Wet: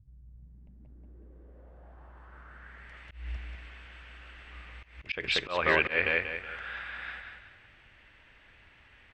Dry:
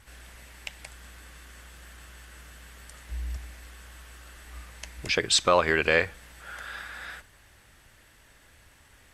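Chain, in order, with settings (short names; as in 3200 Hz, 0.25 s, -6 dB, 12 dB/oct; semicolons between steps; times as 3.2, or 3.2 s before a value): feedback echo 0.186 s, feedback 36%, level -5.5 dB; low-pass sweep 130 Hz -> 2600 Hz, 0.25–3.09; auto swell 0.18 s; gain -4.5 dB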